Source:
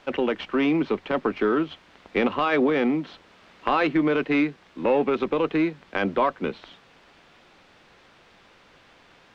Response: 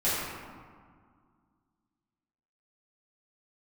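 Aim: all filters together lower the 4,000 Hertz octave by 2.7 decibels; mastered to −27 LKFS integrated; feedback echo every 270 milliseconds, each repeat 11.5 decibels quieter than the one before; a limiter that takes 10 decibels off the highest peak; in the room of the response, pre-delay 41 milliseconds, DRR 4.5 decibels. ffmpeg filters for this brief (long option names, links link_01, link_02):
-filter_complex "[0:a]equalizer=frequency=4000:width_type=o:gain=-4,alimiter=limit=-17.5dB:level=0:latency=1,aecho=1:1:270|540|810:0.266|0.0718|0.0194,asplit=2[link_01][link_02];[1:a]atrim=start_sample=2205,adelay=41[link_03];[link_02][link_03]afir=irnorm=-1:irlink=0,volume=-16.5dB[link_04];[link_01][link_04]amix=inputs=2:normalize=0,volume=-1dB"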